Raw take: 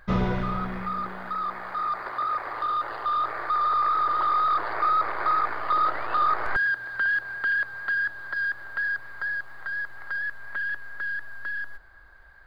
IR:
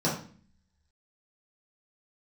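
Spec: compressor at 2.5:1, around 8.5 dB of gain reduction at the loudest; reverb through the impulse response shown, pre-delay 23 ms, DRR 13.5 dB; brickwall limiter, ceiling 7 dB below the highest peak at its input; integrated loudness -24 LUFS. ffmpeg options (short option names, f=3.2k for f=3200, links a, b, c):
-filter_complex "[0:a]acompressor=threshold=-33dB:ratio=2.5,alimiter=level_in=2.5dB:limit=-24dB:level=0:latency=1,volume=-2.5dB,asplit=2[a][b];[1:a]atrim=start_sample=2205,adelay=23[c];[b][c]afir=irnorm=-1:irlink=0,volume=-24.5dB[d];[a][d]amix=inputs=2:normalize=0,volume=10dB"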